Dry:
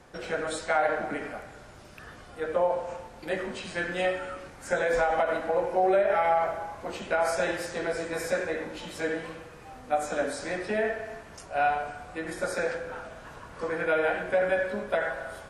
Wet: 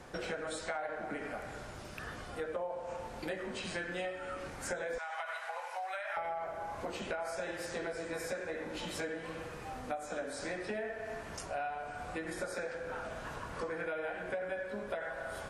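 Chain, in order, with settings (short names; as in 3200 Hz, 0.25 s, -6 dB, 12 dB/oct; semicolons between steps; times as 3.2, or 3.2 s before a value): 4.98–6.17 Bessel high-pass 1300 Hz, order 6; compressor 6:1, threshold -39 dBFS, peak gain reduction 17.5 dB; gain +2.5 dB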